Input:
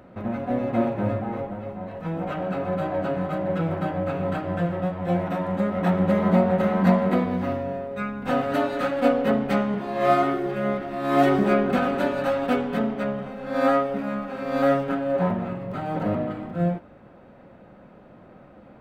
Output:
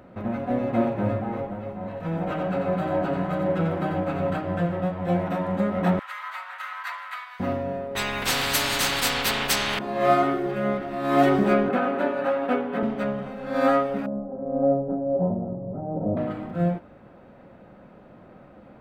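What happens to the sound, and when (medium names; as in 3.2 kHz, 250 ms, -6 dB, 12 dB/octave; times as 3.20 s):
1.74–4.30 s: delay 90 ms -5 dB
5.99–7.40 s: steep high-pass 1.1 kHz
7.95–9.79 s: spectrum-flattening compressor 10:1
11.69–12.83 s: three-band isolator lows -16 dB, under 200 Hz, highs -13 dB, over 2.8 kHz
14.06–16.17 s: Chebyshev low-pass 650 Hz, order 3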